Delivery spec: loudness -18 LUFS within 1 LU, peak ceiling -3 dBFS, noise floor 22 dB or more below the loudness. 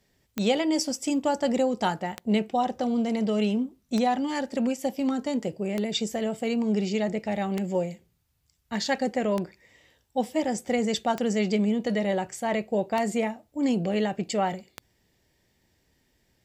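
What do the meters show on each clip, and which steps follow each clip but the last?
clicks found 9; loudness -27.5 LUFS; peak level -11.0 dBFS; loudness target -18.0 LUFS
-> de-click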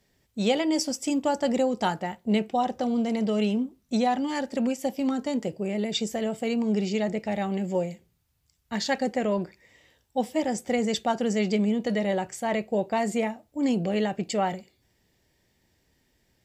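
clicks found 0; loudness -27.5 LUFS; peak level -11.0 dBFS; loudness target -18.0 LUFS
-> trim +9.5 dB; peak limiter -3 dBFS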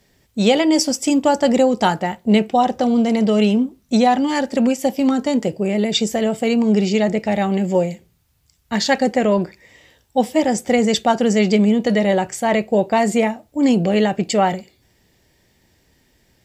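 loudness -18.0 LUFS; peak level -3.0 dBFS; noise floor -61 dBFS

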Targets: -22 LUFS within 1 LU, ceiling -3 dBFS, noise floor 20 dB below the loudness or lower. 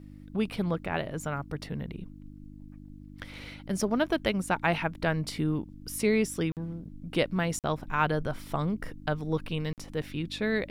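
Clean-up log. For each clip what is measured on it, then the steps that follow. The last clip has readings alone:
dropouts 3; longest dropout 48 ms; hum 50 Hz; highest harmonic 300 Hz; hum level -45 dBFS; loudness -31.0 LUFS; peak level -11.0 dBFS; loudness target -22.0 LUFS
-> interpolate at 6.52/7.59/9.73 s, 48 ms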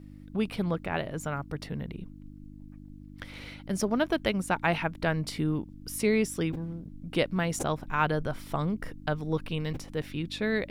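dropouts 0; hum 50 Hz; highest harmonic 300 Hz; hum level -45 dBFS
-> de-hum 50 Hz, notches 6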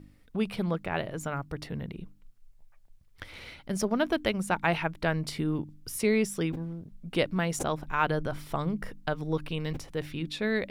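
hum not found; loudness -31.0 LUFS; peak level -11.0 dBFS; loudness target -22.0 LUFS
-> trim +9 dB; peak limiter -3 dBFS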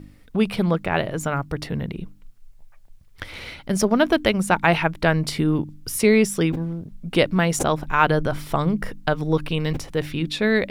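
loudness -22.0 LUFS; peak level -3.0 dBFS; noise floor -48 dBFS

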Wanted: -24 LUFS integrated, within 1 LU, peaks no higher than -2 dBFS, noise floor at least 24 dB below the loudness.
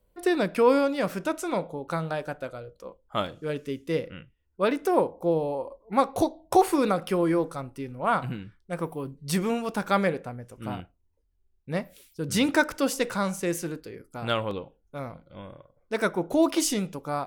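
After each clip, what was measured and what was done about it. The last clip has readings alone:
dropouts 1; longest dropout 1.6 ms; loudness -27.5 LUFS; peak level -7.5 dBFS; loudness target -24.0 LUFS
-> interpolate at 14.51 s, 1.6 ms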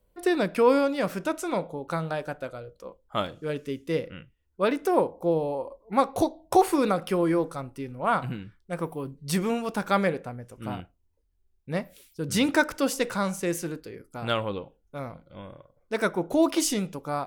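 dropouts 0; loudness -27.5 LUFS; peak level -7.5 dBFS; loudness target -24.0 LUFS
-> trim +3.5 dB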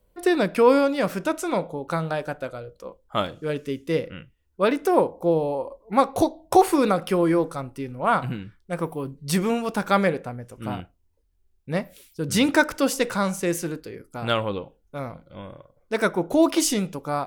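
loudness -24.0 LUFS; peak level -4.0 dBFS; noise floor -65 dBFS

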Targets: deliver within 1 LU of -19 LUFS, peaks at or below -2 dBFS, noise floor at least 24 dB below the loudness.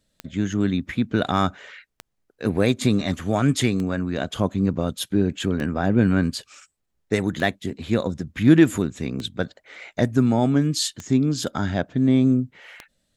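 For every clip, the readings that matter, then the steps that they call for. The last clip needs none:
clicks found 8; loudness -22.5 LUFS; peak level -3.0 dBFS; loudness target -19.0 LUFS
-> de-click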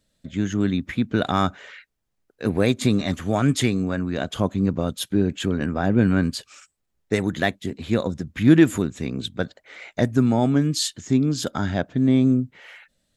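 clicks found 0; loudness -22.5 LUFS; peak level -3.0 dBFS; loudness target -19.0 LUFS
-> trim +3.5 dB; peak limiter -2 dBFS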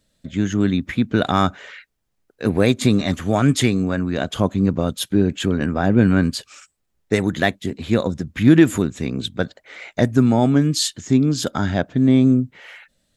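loudness -19.0 LUFS; peak level -2.0 dBFS; noise floor -71 dBFS

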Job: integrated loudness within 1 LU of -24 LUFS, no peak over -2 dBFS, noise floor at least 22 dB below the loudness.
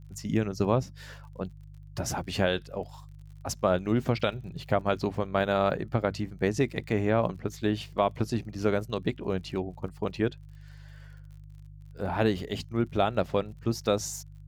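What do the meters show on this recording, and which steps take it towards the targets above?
tick rate 42 per s; hum 50 Hz; highest harmonic 150 Hz; hum level -46 dBFS; loudness -29.5 LUFS; peak level -11.0 dBFS; loudness target -24.0 LUFS
-> de-click; de-hum 50 Hz, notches 3; trim +5.5 dB

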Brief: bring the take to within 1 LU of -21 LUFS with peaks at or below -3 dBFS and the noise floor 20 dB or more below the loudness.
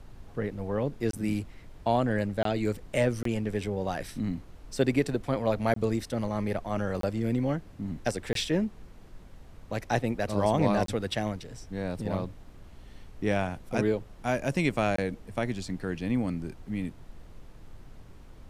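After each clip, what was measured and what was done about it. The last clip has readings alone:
dropouts 8; longest dropout 23 ms; noise floor -50 dBFS; noise floor target -51 dBFS; loudness -30.5 LUFS; peak level -11.0 dBFS; loudness target -21.0 LUFS
-> interpolate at 1.11/2.43/3.23/5.74/7.01/8.33/10.86/14.96 s, 23 ms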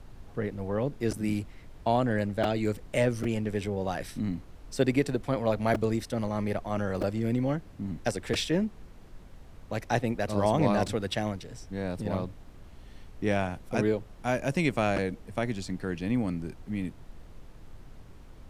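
dropouts 0; noise floor -49 dBFS; noise floor target -51 dBFS
-> noise print and reduce 6 dB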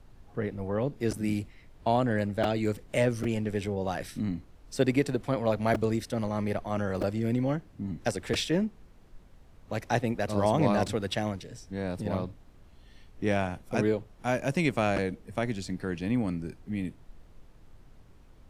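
noise floor -55 dBFS; loudness -30.0 LUFS; peak level -11.0 dBFS; loudness target -21.0 LUFS
-> trim +9 dB; peak limiter -3 dBFS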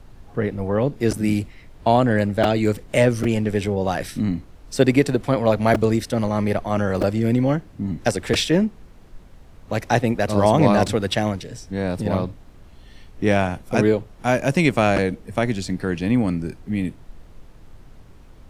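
loudness -21.5 LUFS; peak level -3.0 dBFS; noise floor -46 dBFS

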